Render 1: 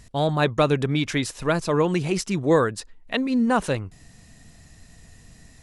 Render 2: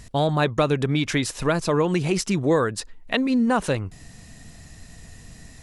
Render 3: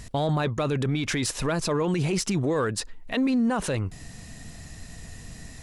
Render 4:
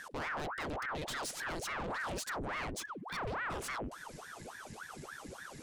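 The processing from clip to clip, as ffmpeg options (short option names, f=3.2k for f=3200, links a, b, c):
-af "acompressor=threshold=-26dB:ratio=2,volume=5dB"
-filter_complex "[0:a]asplit=2[a][b];[b]asoftclip=type=tanh:threshold=-25dB,volume=-10.5dB[c];[a][c]amix=inputs=2:normalize=0,alimiter=limit=-18dB:level=0:latency=1:release=13"
-af "asoftclip=type=tanh:threshold=-29.5dB,aeval=exprs='val(0)*sin(2*PI*930*n/s+930*0.85/3.5*sin(2*PI*3.5*n/s))':c=same,volume=-4dB"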